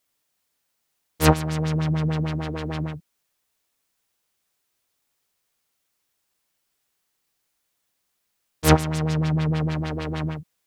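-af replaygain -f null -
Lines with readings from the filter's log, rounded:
track_gain = +9.3 dB
track_peak = 0.613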